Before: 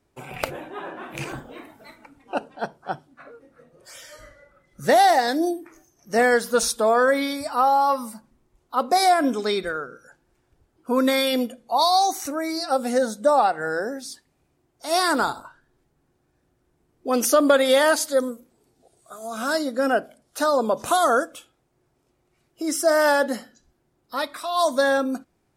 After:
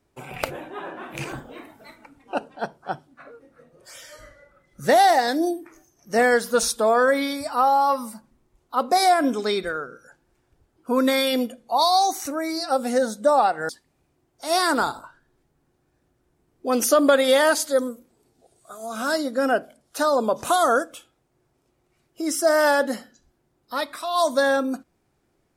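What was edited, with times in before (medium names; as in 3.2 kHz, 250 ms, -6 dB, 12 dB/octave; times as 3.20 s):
13.69–14.10 s: delete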